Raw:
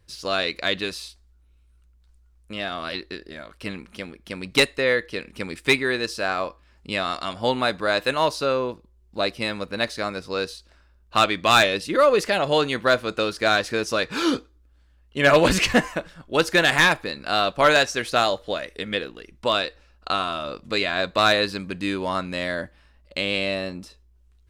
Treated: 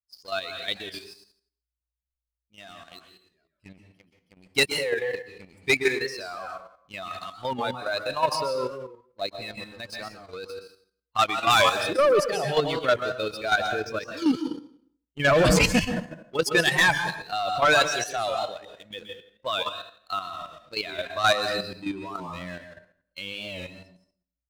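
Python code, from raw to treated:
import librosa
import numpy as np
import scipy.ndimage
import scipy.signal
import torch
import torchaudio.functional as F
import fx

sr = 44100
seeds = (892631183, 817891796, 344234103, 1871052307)

y = fx.bin_expand(x, sr, power=2.0)
y = fx.lowpass(y, sr, hz=3000.0, slope=12, at=(13.56, 14.18))
y = fx.transient(y, sr, attack_db=-4, sustain_db=4)
y = fx.leveller(y, sr, passes=2)
y = fx.rev_plate(y, sr, seeds[0], rt60_s=0.58, hf_ratio=0.85, predelay_ms=115, drr_db=4.5)
y = fx.level_steps(y, sr, step_db=9)
y = fx.record_warp(y, sr, rpm=45.0, depth_cents=100.0)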